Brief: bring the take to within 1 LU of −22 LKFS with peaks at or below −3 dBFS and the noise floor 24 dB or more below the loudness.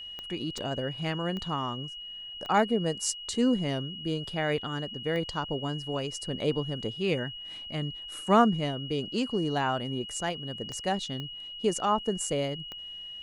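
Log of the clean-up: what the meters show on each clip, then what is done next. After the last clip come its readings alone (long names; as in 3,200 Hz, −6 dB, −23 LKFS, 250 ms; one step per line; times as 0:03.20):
number of clicks 8; interfering tone 2,900 Hz; level of the tone −39 dBFS; integrated loudness −30.5 LKFS; sample peak −10.0 dBFS; target loudness −22.0 LKFS
→ click removal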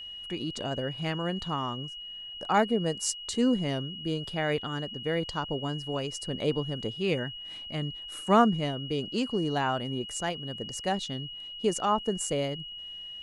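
number of clicks 0; interfering tone 2,900 Hz; level of the tone −39 dBFS
→ notch filter 2,900 Hz, Q 30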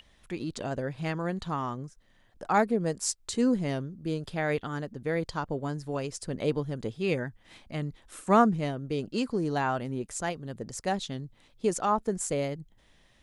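interfering tone none found; integrated loudness −30.5 LKFS; sample peak −10.0 dBFS; target loudness −22.0 LKFS
→ level +8.5 dB
brickwall limiter −3 dBFS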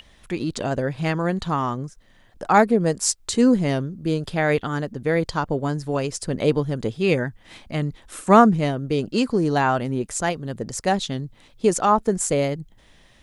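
integrated loudness −22.0 LKFS; sample peak −3.0 dBFS; background noise floor −54 dBFS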